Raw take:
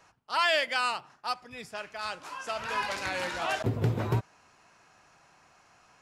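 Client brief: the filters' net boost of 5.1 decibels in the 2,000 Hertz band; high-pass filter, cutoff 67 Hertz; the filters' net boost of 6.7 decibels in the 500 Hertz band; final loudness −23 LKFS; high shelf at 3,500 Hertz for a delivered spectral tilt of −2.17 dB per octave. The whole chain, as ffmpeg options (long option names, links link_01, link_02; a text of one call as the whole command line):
ffmpeg -i in.wav -af "highpass=67,equalizer=frequency=500:width_type=o:gain=8.5,equalizer=frequency=2000:width_type=o:gain=5,highshelf=frequency=3500:gain=3.5,volume=3.5dB" out.wav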